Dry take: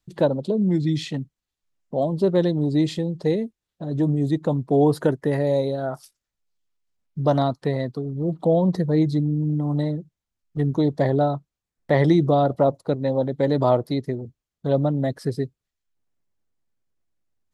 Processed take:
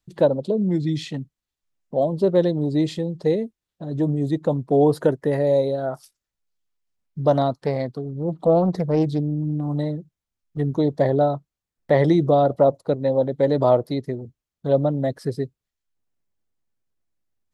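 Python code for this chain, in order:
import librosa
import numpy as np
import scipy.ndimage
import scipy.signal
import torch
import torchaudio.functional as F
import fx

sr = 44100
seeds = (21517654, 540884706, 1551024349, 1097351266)

y = fx.dynamic_eq(x, sr, hz=540.0, q=1.6, threshold_db=-30.0, ratio=4.0, max_db=5)
y = fx.doppler_dist(y, sr, depth_ms=0.33, at=(7.56, 9.68))
y = F.gain(torch.from_numpy(y), -1.5).numpy()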